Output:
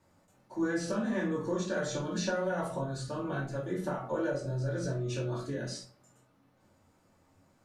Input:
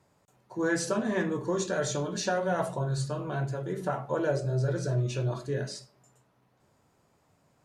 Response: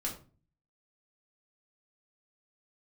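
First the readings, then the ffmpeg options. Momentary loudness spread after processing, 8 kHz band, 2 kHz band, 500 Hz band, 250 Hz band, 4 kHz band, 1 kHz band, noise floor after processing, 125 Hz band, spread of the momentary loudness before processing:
5 LU, −6.0 dB, −3.5 dB, −3.5 dB, −1.0 dB, −3.5 dB, −4.5 dB, −68 dBFS, −5.5 dB, 5 LU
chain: -filter_complex "[0:a]acrossover=split=4900[link_01][link_02];[link_02]alimiter=level_in=12dB:limit=-24dB:level=0:latency=1:release=161,volume=-12dB[link_03];[link_01][link_03]amix=inputs=2:normalize=0,acompressor=threshold=-29dB:ratio=6[link_04];[1:a]atrim=start_sample=2205,atrim=end_sample=3528[link_05];[link_04][link_05]afir=irnorm=-1:irlink=0,volume=-1.5dB"

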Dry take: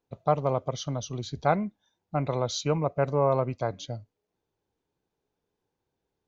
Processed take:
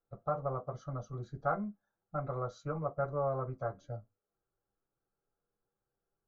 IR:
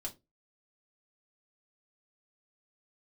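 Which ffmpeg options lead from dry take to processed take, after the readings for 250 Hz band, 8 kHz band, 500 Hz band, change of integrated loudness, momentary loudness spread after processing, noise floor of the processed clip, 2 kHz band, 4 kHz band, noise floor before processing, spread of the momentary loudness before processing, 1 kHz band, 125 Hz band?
−10.5 dB, can't be measured, −9.0 dB, −9.5 dB, 9 LU, below −85 dBFS, −9.0 dB, below −25 dB, −84 dBFS, 11 LU, −8.5 dB, −9.0 dB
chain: -filter_complex "[0:a]highshelf=frequency=2000:width_type=q:width=3:gain=-12,asplit=2[link_01][link_02];[link_02]acompressor=threshold=-29dB:ratio=6,volume=-2dB[link_03];[link_01][link_03]amix=inputs=2:normalize=0[link_04];[1:a]atrim=start_sample=2205,asetrate=88200,aresample=44100[link_05];[link_04][link_05]afir=irnorm=-1:irlink=0,volume=-7.5dB"

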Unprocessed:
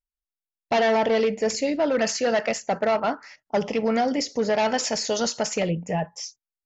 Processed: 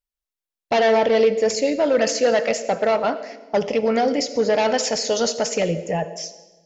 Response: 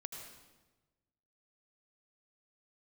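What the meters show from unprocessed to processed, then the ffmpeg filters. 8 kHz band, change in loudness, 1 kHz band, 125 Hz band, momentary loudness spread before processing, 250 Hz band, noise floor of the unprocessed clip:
can't be measured, +3.5 dB, +2.0 dB, +0.5 dB, 8 LU, +1.5 dB, below −85 dBFS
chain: -filter_complex "[0:a]asplit=2[link_01][link_02];[link_02]equalizer=frequency=125:width_type=o:width=1:gain=-10,equalizer=frequency=250:width_type=o:width=1:gain=3,equalizer=frequency=500:width_type=o:width=1:gain=12,equalizer=frequency=1000:width_type=o:width=1:gain=-7,equalizer=frequency=4000:width_type=o:width=1:gain=4[link_03];[1:a]atrim=start_sample=2205,lowshelf=frequency=200:gain=-6.5[link_04];[link_03][link_04]afir=irnorm=-1:irlink=0,volume=-6dB[link_05];[link_01][link_05]amix=inputs=2:normalize=0"

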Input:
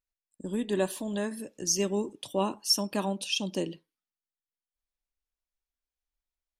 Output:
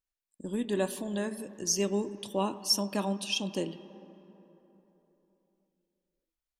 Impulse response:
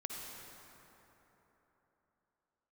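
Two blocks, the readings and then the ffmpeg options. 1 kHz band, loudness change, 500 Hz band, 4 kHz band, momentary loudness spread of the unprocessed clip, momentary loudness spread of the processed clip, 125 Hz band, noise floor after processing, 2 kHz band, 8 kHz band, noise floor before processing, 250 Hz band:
−1.0 dB, −1.0 dB, −1.5 dB, −1.5 dB, 10 LU, 10 LU, −0.5 dB, below −85 dBFS, −1.0 dB, −1.5 dB, below −85 dBFS, −0.5 dB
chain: -filter_complex "[0:a]asplit=2[link_01][link_02];[1:a]atrim=start_sample=2205,lowpass=3100,adelay=25[link_03];[link_02][link_03]afir=irnorm=-1:irlink=0,volume=-12dB[link_04];[link_01][link_04]amix=inputs=2:normalize=0,volume=-1.5dB"

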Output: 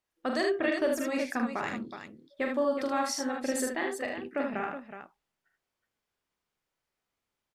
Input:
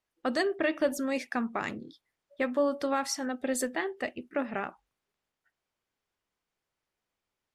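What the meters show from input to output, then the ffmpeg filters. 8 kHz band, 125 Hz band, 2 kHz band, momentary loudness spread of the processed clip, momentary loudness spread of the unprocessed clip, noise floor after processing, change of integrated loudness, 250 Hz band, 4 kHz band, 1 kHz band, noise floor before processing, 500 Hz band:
+0.5 dB, +0.5 dB, +0.5 dB, 15 LU, 9 LU, below −85 dBFS, +0.5 dB, 0.0 dB, +0.5 dB, +1.0 dB, below −85 dBFS, +0.5 dB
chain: -af "aecho=1:1:43|76|370:0.562|0.562|0.355,volume=-2dB"

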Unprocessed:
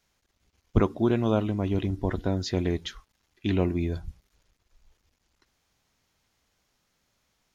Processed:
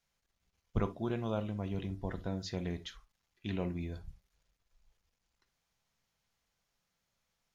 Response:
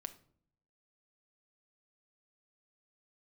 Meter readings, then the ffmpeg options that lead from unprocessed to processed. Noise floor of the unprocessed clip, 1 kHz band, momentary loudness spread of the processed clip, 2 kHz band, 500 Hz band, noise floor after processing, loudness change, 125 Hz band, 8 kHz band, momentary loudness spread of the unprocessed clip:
−75 dBFS, −9.5 dB, 10 LU, −9.0 dB, −11.0 dB, −84 dBFS, −10.5 dB, −10.0 dB, can't be measured, 10 LU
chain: -filter_complex "[0:a]equalizer=frequency=320:width=3:gain=-8[link_01];[1:a]atrim=start_sample=2205,atrim=end_sample=3528[link_02];[link_01][link_02]afir=irnorm=-1:irlink=0,volume=-5.5dB"

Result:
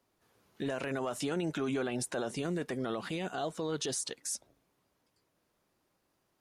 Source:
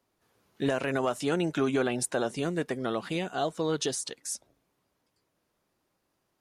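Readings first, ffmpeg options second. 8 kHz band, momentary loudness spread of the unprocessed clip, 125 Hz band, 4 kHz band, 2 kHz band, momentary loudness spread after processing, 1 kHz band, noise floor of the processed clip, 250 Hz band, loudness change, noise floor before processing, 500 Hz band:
−3.0 dB, 6 LU, −4.5 dB, −4.0 dB, −5.5 dB, 4 LU, −6.0 dB, −78 dBFS, −5.0 dB, −5.0 dB, −78 dBFS, −6.0 dB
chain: -af "alimiter=level_in=1.5dB:limit=-24dB:level=0:latency=1:release=21,volume=-1.5dB"

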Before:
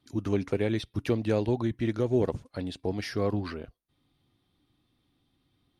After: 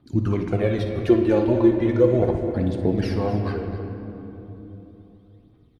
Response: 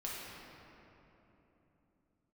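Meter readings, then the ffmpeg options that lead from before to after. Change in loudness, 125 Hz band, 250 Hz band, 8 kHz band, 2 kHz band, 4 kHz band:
+8.0 dB, +8.0 dB, +9.0 dB, can't be measured, +4.0 dB, +0.5 dB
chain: -filter_complex "[0:a]highshelf=frequency=2200:gain=-11.5,aphaser=in_gain=1:out_gain=1:delay=3.6:decay=0.67:speed=0.36:type=triangular,aecho=1:1:58|259:0.237|0.224,asplit=2[link_01][link_02];[1:a]atrim=start_sample=2205[link_03];[link_02][link_03]afir=irnorm=-1:irlink=0,volume=-2dB[link_04];[link_01][link_04]amix=inputs=2:normalize=0,volume=2dB"

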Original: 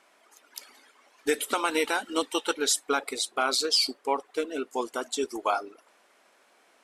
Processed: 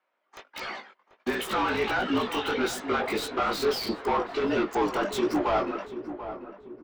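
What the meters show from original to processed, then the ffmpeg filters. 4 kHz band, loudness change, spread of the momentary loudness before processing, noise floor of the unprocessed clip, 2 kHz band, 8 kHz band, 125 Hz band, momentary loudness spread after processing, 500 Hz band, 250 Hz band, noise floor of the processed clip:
−5.5 dB, −0.5 dB, 10 LU, −63 dBFS, +1.5 dB, −11.0 dB, can't be measured, 11 LU, +2.5 dB, +5.5 dB, −76 dBFS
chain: -filter_complex "[0:a]agate=range=-38dB:threshold=-54dB:ratio=16:detection=peak,asplit=2[link_01][link_02];[link_02]acompressor=threshold=-35dB:ratio=6,volume=-3dB[link_03];[link_01][link_03]amix=inputs=2:normalize=0,alimiter=limit=-21dB:level=0:latency=1:release=26,afreqshift=-46,asplit=2[link_04][link_05];[link_05]highpass=frequency=720:poles=1,volume=29dB,asoftclip=type=tanh:threshold=-17dB[link_06];[link_04][link_06]amix=inputs=2:normalize=0,lowpass=frequency=1300:poles=1,volume=-6dB,flanger=delay=16:depth=4.9:speed=1.5,acrossover=split=270|5700[link_07][link_08][link_09];[link_09]acrusher=bits=6:mix=0:aa=0.000001[link_10];[link_07][link_08][link_10]amix=inputs=3:normalize=0,asplit=2[link_11][link_12];[link_12]adelay=738,lowpass=frequency=1200:poles=1,volume=-10.5dB,asplit=2[link_13][link_14];[link_14]adelay=738,lowpass=frequency=1200:poles=1,volume=0.48,asplit=2[link_15][link_16];[link_16]adelay=738,lowpass=frequency=1200:poles=1,volume=0.48,asplit=2[link_17][link_18];[link_18]adelay=738,lowpass=frequency=1200:poles=1,volume=0.48,asplit=2[link_19][link_20];[link_20]adelay=738,lowpass=frequency=1200:poles=1,volume=0.48[link_21];[link_11][link_13][link_15][link_17][link_19][link_21]amix=inputs=6:normalize=0,volume=3dB"

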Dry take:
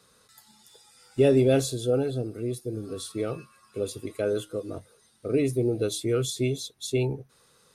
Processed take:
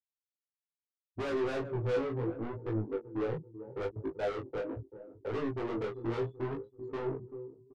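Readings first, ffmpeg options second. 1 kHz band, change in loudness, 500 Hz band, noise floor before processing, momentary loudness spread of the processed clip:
+0.5 dB, −9.0 dB, −8.5 dB, −62 dBFS, 10 LU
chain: -filter_complex "[0:a]afftfilt=real='re*gte(hypot(re,im),0.1)':imag='im*gte(hypot(re,im),0.1)':win_size=1024:overlap=0.75,aemphasis=mode=reproduction:type=75fm,afwtdn=0.02,highshelf=frequency=7800:width_type=q:width=1.5:gain=8,acrossover=split=410|2500[link_01][link_02][link_03];[link_01]acompressor=threshold=-33dB:ratio=10[link_04];[link_04][link_02][link_03]amix=inputs=3:normalize=0,asoftclip=type=hard:threshold=-23.5dB,asplit=2[link_05][link_06];[link_06]adelay=385,lowpass=frequency=3500:poles=1,volume=-18.5dB,asplit=2[link_07][link_08];[link_08]adelay=385,lowpass=frequency=3500:poles=1,volume=0.38,asplit=2[link_09][link_10];[link_10]adelay=385,lowpass=frequency=3500:poles=1,volume=0.38[link_11];[link_07][link_09][link_11]amix=inputs=3:normalize=0[link_12];[link_05][link_12]amix=inputs=2:normalize=0,asoftclip=type=tanh:threshold=-35.5dB,adynamicsmooth=sensitivity=7:basefreq=1000,asplit=2[link_13][link_14];[link_14]adelay=18,volume=-3dB[link_15];[link_13][link_15]amix=inputs=2:normalize=0,flanger=delay=18.5:depth=7.8:speed=0.73,volume=6dB"

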